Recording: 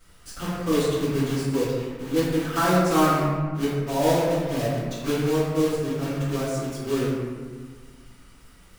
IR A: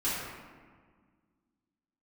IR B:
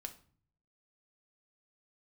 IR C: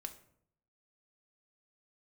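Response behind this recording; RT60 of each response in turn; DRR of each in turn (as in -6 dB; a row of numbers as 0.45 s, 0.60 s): A; 1.7 s, 0.45 s, 0.65 s; -11.0 dB, 5.5 dB, 5.5 dB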